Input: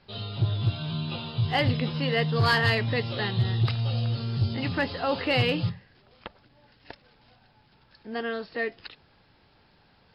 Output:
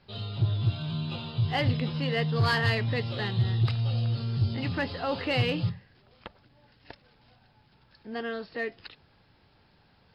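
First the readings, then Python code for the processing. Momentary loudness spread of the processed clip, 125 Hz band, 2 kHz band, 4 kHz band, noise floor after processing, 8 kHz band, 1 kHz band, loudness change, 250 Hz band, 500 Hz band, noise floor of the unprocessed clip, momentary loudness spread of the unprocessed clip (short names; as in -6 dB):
10 LU, -0.5 dB, -3.5 dB, -3.5 dB, -63 dBFS, n/a, -3.5 dB, -2.0 dB, -2.0 dB, -3.0 dB, -62 dBFS, 10 LU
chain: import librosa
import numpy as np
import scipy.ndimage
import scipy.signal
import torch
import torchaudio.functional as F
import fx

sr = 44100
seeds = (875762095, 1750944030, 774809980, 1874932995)

p1 = fx.peak_eq(x, sr, hz=96.0, db=3.5, octaves=2.0)
p2 = 10.0 ** (-28.0 / 20.0) * np.tanh(p1 / 10.0 ** (-28.0 / 20.0))
p3 = p1 + F.gain(torch.from_numpy(p2), -12.0).numpy()
y = F.gain(torch.from_numpy(p3), -4.5).numpy()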